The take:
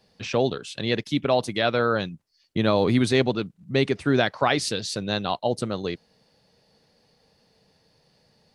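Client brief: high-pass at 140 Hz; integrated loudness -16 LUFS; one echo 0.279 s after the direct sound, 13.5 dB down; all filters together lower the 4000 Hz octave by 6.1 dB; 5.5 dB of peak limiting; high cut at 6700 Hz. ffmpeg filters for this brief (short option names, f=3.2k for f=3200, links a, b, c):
-af "highpass=140,lowpass=6.7k,equalizer=f=4k:t=o:g=-7,alimiter=limit=-13.5dB:level=0:latency=1,aecho=1:1:279:0.211,volume=11dB"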